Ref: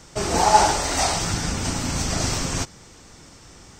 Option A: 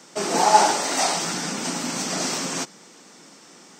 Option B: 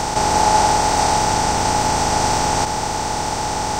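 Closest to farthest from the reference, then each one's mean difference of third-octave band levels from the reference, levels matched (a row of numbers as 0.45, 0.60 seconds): A, B; 2.5, 7.5 decibels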